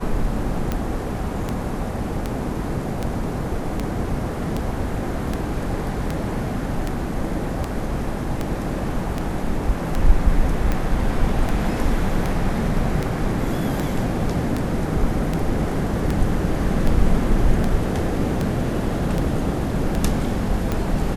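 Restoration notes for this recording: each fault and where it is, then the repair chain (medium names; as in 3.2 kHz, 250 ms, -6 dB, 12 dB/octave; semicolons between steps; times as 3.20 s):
tick 78 rpm -10 dBFS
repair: de-click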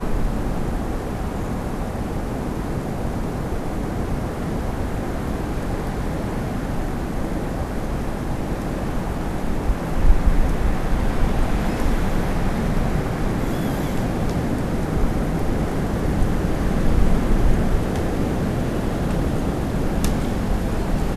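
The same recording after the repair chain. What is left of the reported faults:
nothing left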